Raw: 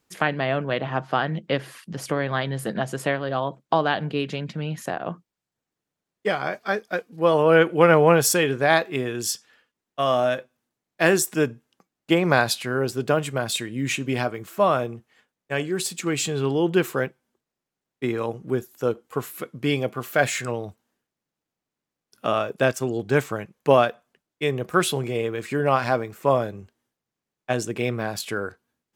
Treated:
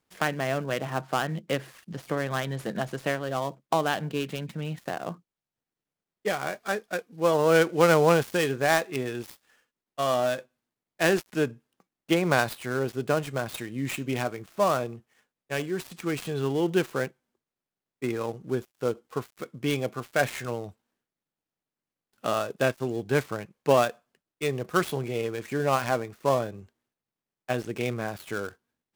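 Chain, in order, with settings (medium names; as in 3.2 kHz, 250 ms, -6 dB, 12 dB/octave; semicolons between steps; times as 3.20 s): dead-time distortion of 0.083 ms; trim -4 dB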